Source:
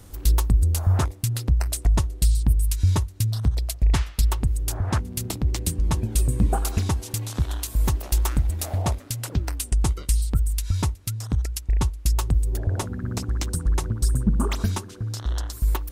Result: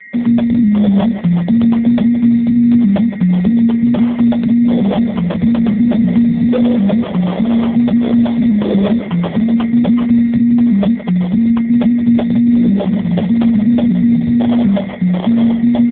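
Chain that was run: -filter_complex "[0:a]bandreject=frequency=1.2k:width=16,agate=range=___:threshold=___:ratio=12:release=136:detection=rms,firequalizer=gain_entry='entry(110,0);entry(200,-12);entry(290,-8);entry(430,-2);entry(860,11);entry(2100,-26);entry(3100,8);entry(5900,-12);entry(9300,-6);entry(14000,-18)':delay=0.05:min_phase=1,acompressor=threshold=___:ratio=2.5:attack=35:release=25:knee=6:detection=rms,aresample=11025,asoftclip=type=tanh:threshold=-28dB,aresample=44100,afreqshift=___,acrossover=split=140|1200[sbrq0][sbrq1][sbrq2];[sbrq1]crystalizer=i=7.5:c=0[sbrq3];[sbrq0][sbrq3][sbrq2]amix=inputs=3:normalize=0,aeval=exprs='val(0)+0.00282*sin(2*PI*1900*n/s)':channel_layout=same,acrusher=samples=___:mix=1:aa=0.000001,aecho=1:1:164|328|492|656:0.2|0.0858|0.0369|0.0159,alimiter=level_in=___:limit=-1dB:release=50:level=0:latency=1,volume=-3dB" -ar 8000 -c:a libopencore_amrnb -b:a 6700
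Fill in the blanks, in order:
-28dB, -38dB, -31dB, -290, 11, 23.5dB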